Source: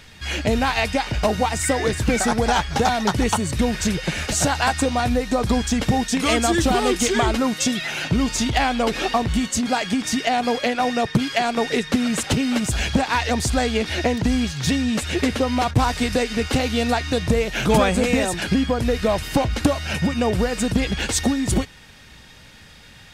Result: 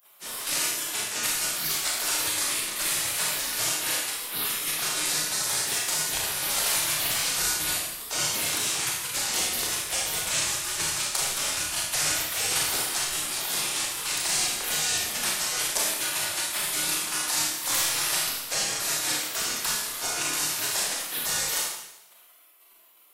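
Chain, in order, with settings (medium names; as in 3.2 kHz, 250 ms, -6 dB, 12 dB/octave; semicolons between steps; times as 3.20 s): vibrato 0.74 Hz 9.3 cents; resonant high shelf 4.2 kHz +12.5 dB, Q 1.5; in parallel at +1.5 dB: peak limiter -6 dBFS, peak gain reduction 10.5 dB; on the sum: spectral gate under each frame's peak -25 dB weak; Schroeder reverb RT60 0.86 s, combs from 26 ms, DRR -2.5 dB; trim -5.5 dB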